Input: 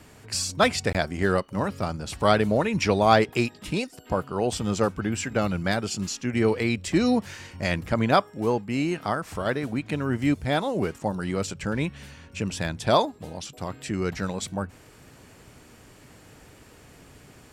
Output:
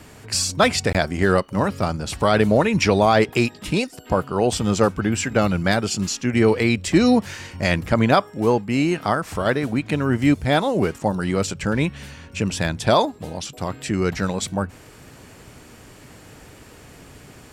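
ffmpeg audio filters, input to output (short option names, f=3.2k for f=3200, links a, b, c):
-af "alimiter=level_in=10.5dB:limit=-1dB:release=50:level=0:latency=1,volume=-4.5dB"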